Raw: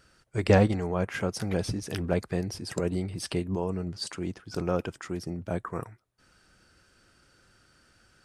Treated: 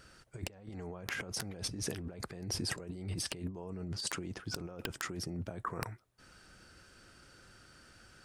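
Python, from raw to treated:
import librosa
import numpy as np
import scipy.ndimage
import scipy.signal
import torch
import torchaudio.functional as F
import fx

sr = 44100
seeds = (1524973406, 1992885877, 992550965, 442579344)

y = fx.over_compress(x, sr, threshold_db=-38.0, ratio=-1.0)
y = (np.mod(10.0 ** (17.5 / 20.0) * y + 1.0, 2.0) - 1.0) / 10.0 ** (17.5 / 20.0)
y = y * 10.0 ** (-4.0 / 20.0)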